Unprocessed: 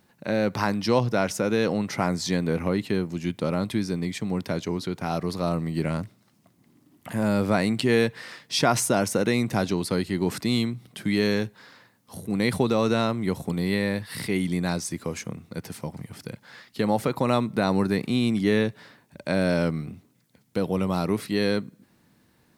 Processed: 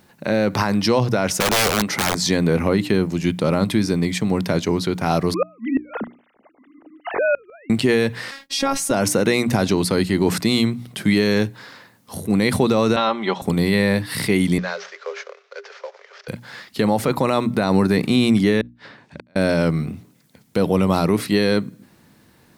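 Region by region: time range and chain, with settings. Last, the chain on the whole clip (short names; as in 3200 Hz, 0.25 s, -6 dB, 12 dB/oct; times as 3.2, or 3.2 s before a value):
1.4–2.22 bell 96 Hz -8 dB 1.4 oct + wrapped overs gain 21 dB
5.34–7.7 sine-wave speech + flipped gate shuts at -19 dBFS, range -33 dB
8.31–8.91 expander -49 dBFS + robotiser 274 Hz
12.96–13.42 speaker cabinet 390–5000 Hz, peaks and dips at 430 Hz -4 dB, 830 Hz +7 dB, 1200 Hz +3 dB, 3300 Hz +8 dB, 4700 Hz -6 dB + comb 5.1 ms, depth 55%
14.58–16.28 CVSD 32 kbps + rippled Chebyshev high-pass 390 Hz, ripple 9 dB
18.61–19.36 flipped gate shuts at -28 dBFS, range -42 dB + air absorption 130 m + mismatched tape noise reduction encoder only
whole clip: notches 60/120/180/240/300 Hz; limiter -16 dBFS; gain +9 dB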